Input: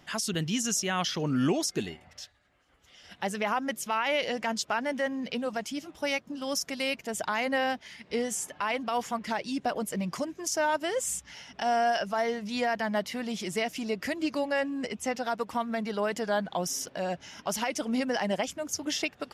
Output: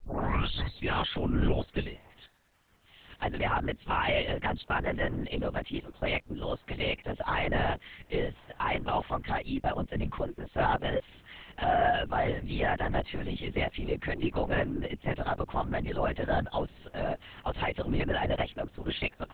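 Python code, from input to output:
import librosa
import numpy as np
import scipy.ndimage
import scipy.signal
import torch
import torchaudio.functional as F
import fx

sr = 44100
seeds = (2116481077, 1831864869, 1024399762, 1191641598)

y = fx.tape_start_head(x, sr, length_s=0.95)
y = fx.lpc_vocoder(y, sr, seeds[0], excitation='whisper', order=8)
y = fx.quant_dither(y, sr, seeds[1], bits=12, dither='none')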